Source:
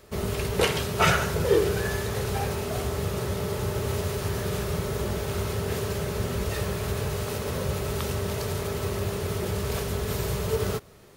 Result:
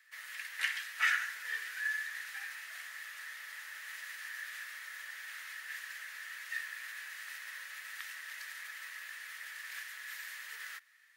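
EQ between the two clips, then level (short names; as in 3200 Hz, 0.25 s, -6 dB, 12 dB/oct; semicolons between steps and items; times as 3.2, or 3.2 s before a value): ladder high-pass 1700 Hz, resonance 80%; -1.0 dB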